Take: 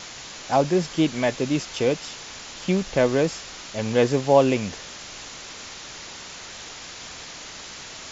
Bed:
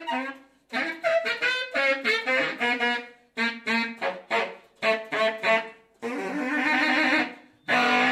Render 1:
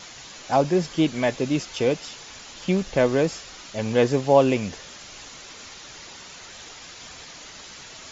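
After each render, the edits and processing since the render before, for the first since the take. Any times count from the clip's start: noise reduction 6 dB, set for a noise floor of -40 dBFS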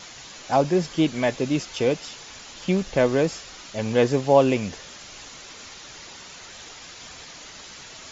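no audible change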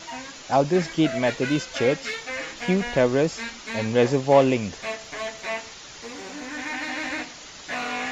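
add bed -8 dB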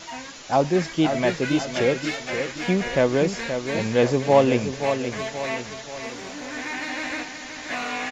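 feedback delay 526 ms, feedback 46%, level -8 dB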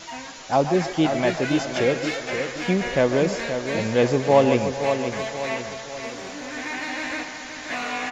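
feedback echo behind a band-pass 142 ms, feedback 64%, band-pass 950 Hz, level -9 dB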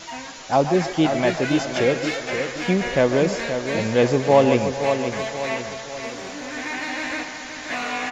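trim +1.5 dB; peak limiter -3 dBFS, peak gain reduction 0.5 dB

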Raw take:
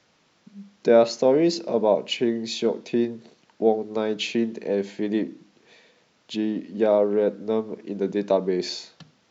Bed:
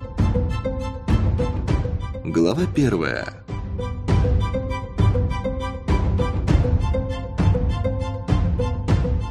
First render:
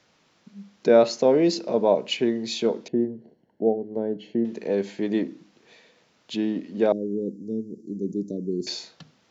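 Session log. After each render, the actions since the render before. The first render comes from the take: 2.88–4.45 s: boxcar filter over 36 samples; 6.92–8.67 s: inverse Chebyshev band-stop 990–2400 Hz, stop band 70 dB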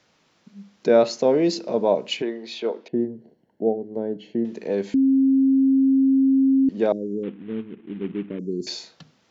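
2.22–2.93 s: band-pass 380–3400 Hz; 4.94–6.69 s: bleep 268 Hz -14 dBFS; 7.23–8.39 s: CVSD coder 16 kbps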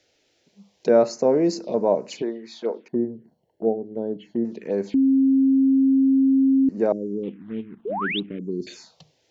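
touch-sensitive phaser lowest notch 180 Hz, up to 3.3 kHz, full sweep at -21 dBFS; 7.85–8.20 s: painted sound rise 370–4000 Hz -27 dBFS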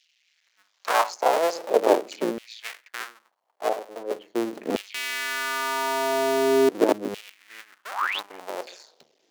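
cycle switcher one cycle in 2, muted; LFO high-pass saw down 0.42 Hz 240–2900 Hz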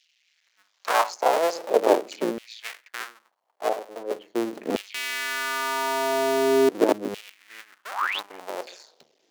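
no audible change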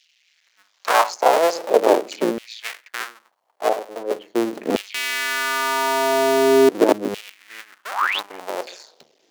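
trim +5.5 dB; peak limiter -2 dBFS, peak gain reduction 3 dB

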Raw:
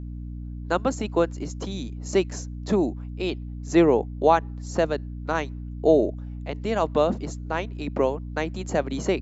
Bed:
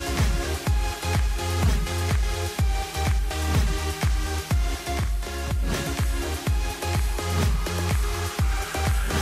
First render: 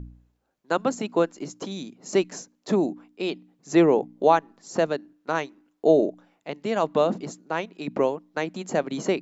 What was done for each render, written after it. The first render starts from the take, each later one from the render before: de-hum 60 Hz, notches 5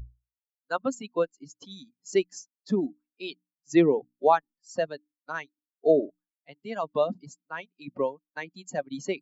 expander on every frequency bin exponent 2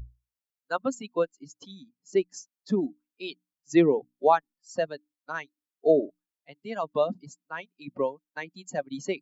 1.71–2.34 s: treble shelf 2.1 kHz -10 dB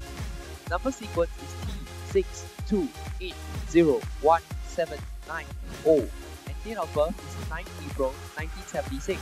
add bed -13 dB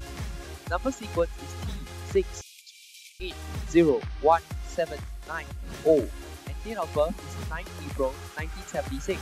2.41–3.20 s: steep high-pass 2.3 kHz 96 dB/octave; 3.89–4.32 s: Savitzky-Golay filter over 15 samples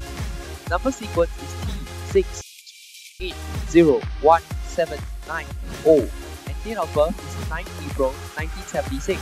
trim +6 dB

